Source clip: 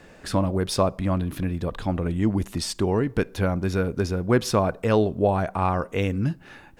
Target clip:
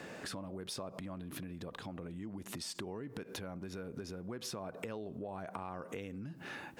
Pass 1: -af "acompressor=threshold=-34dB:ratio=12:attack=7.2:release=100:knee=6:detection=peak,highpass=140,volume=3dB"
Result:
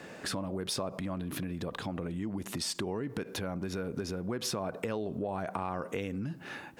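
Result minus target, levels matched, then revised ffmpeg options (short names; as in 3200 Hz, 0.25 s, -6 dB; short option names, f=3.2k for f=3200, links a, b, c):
compressor: peak gain reduction -8 dB
-af "acompressor=threshold=-43dB:ratio=12:attack=7.2:release=100:knee=6:detection=peak,highpass=140,volume=3dB"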